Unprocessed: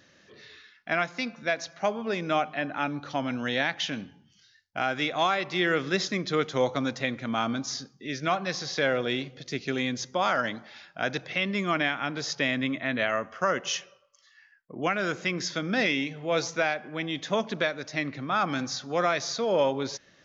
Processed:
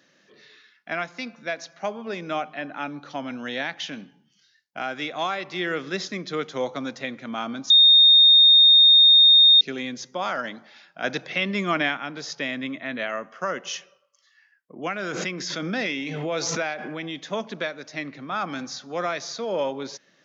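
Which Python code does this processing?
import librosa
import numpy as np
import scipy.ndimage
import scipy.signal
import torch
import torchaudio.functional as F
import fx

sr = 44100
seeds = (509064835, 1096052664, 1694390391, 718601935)

y = fx.pre_swell(x, sr, db_per_s=20.0, at=(15.02, 17.19))
y = fx.edit(y, sr, fx.bleep(start_s=7.7, length_s=1.91, hz=3680.0, db=-8.0),
    fx.clip_gain(start_s=11.04, length_s=0.93, db=5.0), tone=tone)
y = scipy.signal.sosfilt(scipy.signal.butter(4, 150.0, 'highpass', fs=sr, output='sos'), y)
y = y * librosa.db_to_amplitude(-2.0)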